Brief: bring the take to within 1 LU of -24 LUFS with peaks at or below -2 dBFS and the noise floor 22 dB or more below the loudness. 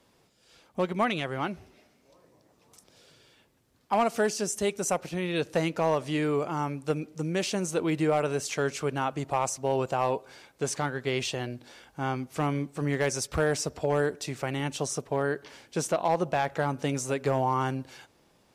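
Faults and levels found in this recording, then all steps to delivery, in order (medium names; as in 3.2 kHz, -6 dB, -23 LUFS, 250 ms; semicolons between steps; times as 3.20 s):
clipped samples 0.3%; clipping level -17.0 dBFS; loudness -29.5 LUFS; peak level -17.0 dBFS; loudness target -24.0 LUFS
-> clip repair -17 dBFS; trim +5.5 dB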